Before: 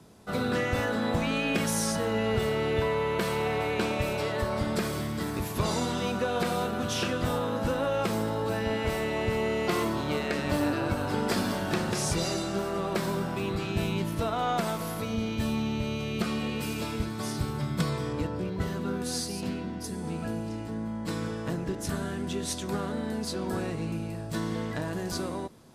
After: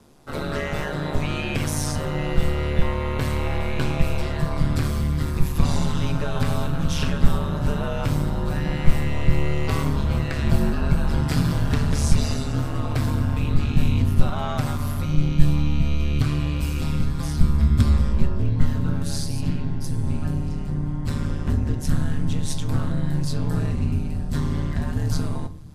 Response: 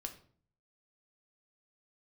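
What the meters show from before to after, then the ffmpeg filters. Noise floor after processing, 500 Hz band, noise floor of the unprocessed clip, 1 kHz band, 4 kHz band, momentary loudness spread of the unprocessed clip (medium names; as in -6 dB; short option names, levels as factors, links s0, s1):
-28 dBFS, -2.5 dB, -36 dBFS, -0.5 dB, +0.5 dB, 6 LU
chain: -filter_complex "[0:a]aeval=exprs='val(0)*sin(2*PI*73*n/s)':c=same,asubboost=boost=7.5:cutoff=140,asplit=2[s0][s1];[1:a]atrim=start_sample=2205[s2];[s1][s2]afir=irnorm=-1:irlink=0,volume=2.24[s3];[s0][s3]amix=inputs=2:normalize=0,volume=0.596"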